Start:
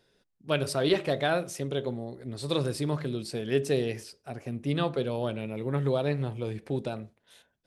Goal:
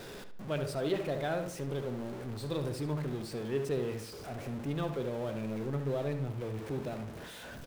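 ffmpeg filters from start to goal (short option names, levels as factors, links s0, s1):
-filter_complex "[0:a]aeval=exprs='val(0)+0.5*0.0335*sgn(val(0))':c=same,highshelf=f=2200:g=-7.5,asplit=2[s0][s1];[s1]adelay=73,lowpass=f=4100:p=1,volume=0.355,asplit=2[s2][s3];[s3]adelay=73,lowpass=f=4100:p=1,volume=0.36,asplit=2[s4][s5];[s5]adelay=73,lowpass=f=4100:p=1,volume=0.36,asplit=2[s6][s7];[s7]adelay=73,lowpass=f=4100:p=1,volume=0.36[s8];[s0][s2][s4][s6][s8]amix=inputs=5:normalize=0,volume=0.376"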